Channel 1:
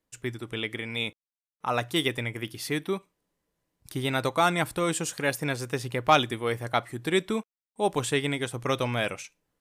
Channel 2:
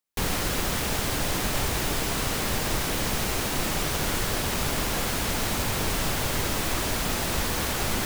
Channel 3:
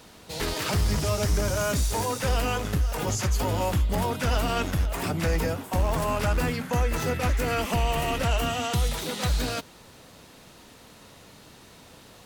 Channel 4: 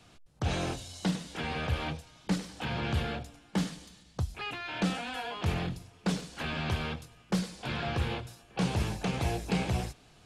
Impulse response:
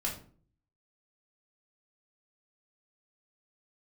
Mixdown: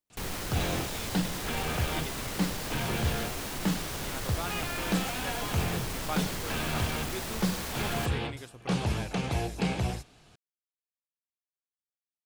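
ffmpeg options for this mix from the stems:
-filter_complex "[0:a]volume=-15.5dB[link_01];[1:a]asoftclip=type=tanh:threshold=-21.5dB,volume=-7dB[link_02];[3:a]adelay=100,volume=0.5dB[link_03];[link_01][link_02][link_03]amix=inputs=3:normalize=0"

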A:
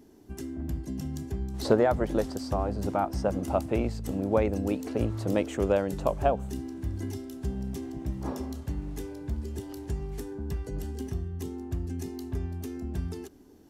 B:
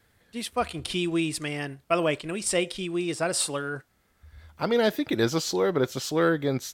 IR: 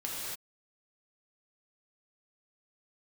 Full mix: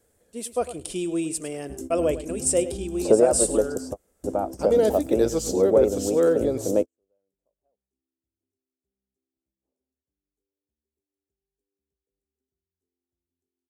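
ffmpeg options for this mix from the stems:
-filter_complex "[0:a]acrossover=split=140|3000[link_01][link_02][link_03];[link_01]acompressor=threshold=-38dB:ratio=2[link_04];[link_04][link_02][link_03]amix=inputs=3:normalize=0,adelay=1400,volume=0.5dB[link_05];[1:a]equalizer=frequency=2300:width=1.9:gain=3,volume=-2dB,asplit=3[link_06][link_07][link_08];[link_07]volume=-14dB[link_09];[link_08]apad=whole_len=665516[link_10];[link_05][link_10]sidechaingate=range=-55dB:threshold=-54dB:ratio=16:detection=peak[link_11];[link_09]aecho=0:1:104:1[link_12];[link_11][link_06][link_12]amix=inputs=3:normalize=0,equalizer=frequency=125:width_type=o:width=1:gain=-7,equalizer=frequency=500:width_type=o:width=1:gain=9,equalizer=frequency=1000:width_type=o:width=1:gain=-5,equalizer=frequency=2000:width_type=o:width=1:gain=-11,equalizer=frequency=4000:width_type=o:width=1:gain=-9,equalizer=frequency=8000:width_type=o:width=1:gain=10"

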